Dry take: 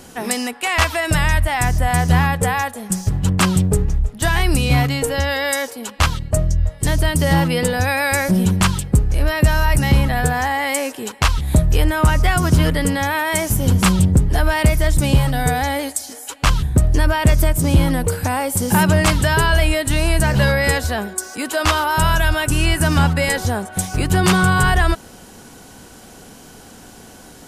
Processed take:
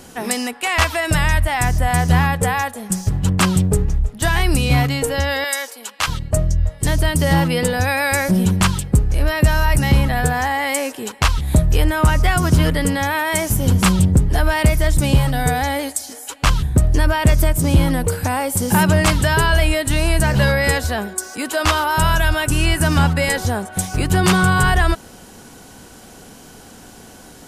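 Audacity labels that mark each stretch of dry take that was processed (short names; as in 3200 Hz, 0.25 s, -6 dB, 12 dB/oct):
5.440000	6.080000	HPF 1100 Hz 6 dB/oct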